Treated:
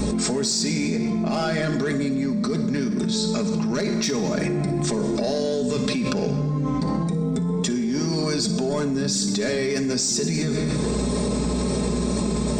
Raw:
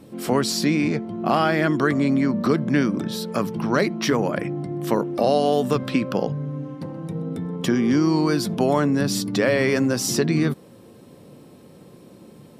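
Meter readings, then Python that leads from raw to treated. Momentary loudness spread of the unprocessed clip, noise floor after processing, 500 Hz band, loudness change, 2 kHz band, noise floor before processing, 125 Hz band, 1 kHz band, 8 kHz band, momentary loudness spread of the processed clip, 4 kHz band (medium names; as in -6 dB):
9 LU, -24 dBFS, -2.0 dB, -1.5 dB, -4.5 dB, -47 dBFS, +1.0 dB, -6.5 dB, +5.5 dB, 2 LU, +3.0 dB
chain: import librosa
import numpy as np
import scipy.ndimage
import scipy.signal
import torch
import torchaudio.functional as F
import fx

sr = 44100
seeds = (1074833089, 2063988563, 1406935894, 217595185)

y = fx.add_hum(x, sr, base_hz=60, snr_db=25)
y = fx.brickwall_lowpass(y, sr, high_hz=8800.0)
y = 10.0 ** (-11.0 / 20.0) * np.tanh(y / 10.0 ** (-11.0 / 20.0))
y = fx.hum_notches(y, sr, base_hz=50, count=3)
y = fx.dynamic_eq(y, sr, hz=1100.0, q=0.77, threshold_db=-37.0, ratio=4.0, max_db=-8)
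y = fx.wow_flutter(y, sr, seeds[0], rate_hz=2.1, depth_cents=24.0)
y = fx.bass_treble(y, sr, bass_db=1, treble_db=9)
y = fx.notch(y, sr, hz=3000.0, q=5.8)
y = y + 0.65 * np.pad(y, (int(4.8 * sr / 1000.0), 0))[:len(y)]
y = fx.room_flutter(y, sr, wall_m=10.0, rt60_s=0.24)
y = fx.rev_gated(y, sr, seeds[1], gate_ms=420, shape='falling', drr_db=8.5)
y = fx.env_flatten(y, sr, amount_pct=100)
y = y * 10.0 ** (-7.5 / 20.0)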